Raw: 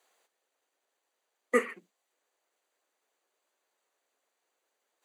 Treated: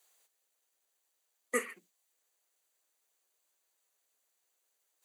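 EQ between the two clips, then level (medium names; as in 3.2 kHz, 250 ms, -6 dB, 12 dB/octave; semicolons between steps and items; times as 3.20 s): pre-emphasis filter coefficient 0.8; +5.5 dB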